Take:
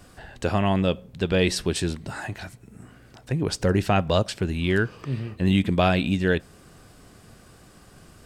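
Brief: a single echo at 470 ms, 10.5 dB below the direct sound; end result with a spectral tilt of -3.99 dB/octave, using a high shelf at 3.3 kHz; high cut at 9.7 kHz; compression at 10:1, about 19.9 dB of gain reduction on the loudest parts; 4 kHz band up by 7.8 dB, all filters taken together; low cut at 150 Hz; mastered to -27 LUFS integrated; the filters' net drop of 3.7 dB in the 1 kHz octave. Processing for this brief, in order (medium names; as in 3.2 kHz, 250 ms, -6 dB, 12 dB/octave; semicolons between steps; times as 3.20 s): high-pass 150 Hz; low-pass 9.7 kHz; peaking EQ 1 kHz -6.5 dB; treble shelf 3.3 kHz +4 dB; peaking EQ 4 kHz +7.5 dB; compression 10:1, threshold -37 dBFS; delay 470 ms -10.5 dB; trim +15 dB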